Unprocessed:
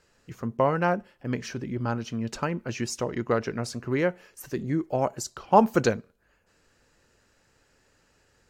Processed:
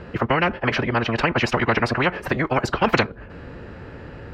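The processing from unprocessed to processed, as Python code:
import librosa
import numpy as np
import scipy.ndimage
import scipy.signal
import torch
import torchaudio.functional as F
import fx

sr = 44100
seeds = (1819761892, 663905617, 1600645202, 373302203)

y = scipy.signal.sosfilt(scipy.signal.butter(2, 56.0, 'highpass', fs=sr, output='sos'), x)
y = fx.low_shelf(y, sr, hz=420.0, db=8.5)
y = fx.stretch_vocoder(y, sr, factor=0.51)
y = fx.air_absorb(y, sr, metres=430.0)
y = fx.spectral_comp(y, sr, ratio=4.0)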